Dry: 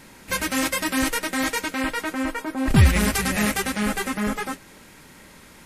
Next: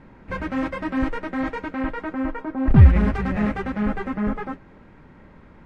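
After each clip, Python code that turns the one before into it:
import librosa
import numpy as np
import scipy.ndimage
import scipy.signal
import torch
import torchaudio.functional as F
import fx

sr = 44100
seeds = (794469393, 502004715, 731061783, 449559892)

y = scipy.signal.sosfilt(scipy.signal.butter(2, 1400.0, 'lowpass', fs=sr, output='sos'), x)
y = fx.low_shelf(y, sr, hz=160.0, db=7.5)
y = F.gain(torch.from_numpy(y), -1.0).numpy()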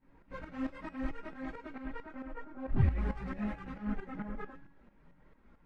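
y = fx.chorus_voices(x, sr, voices=6, hz=0.5, base_ms=20, depth_ms=4.4, mix_pct=70)
y = fx.tremolo_shape(y, sr, shape='saw_up', hz=4.5, depth_pct=75)
y = fx.comb_fb(y, sr, f0_hz=280.0, decay_s=0.86, harmonics='all', damping=0.0, mix_pct=70)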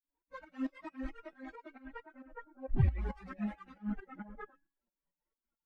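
y = fx.bin_expand(x, sr, power=2.0)
y = F.gain(torch.from_numpy(y), 1.5).numpy()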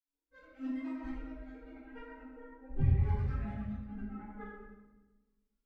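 y = fx.notch_comb(x, sr, f0_hz=180.0)
y = fx.rotary(y, sr, hz=0.85)
y = fx.room_shoebox(y, sr, seeds[0], volume_m3=780.0, walls='mixed', distance_m=3.8)
y = F.gain(torch.from_numpy(y), -6.0).numpy()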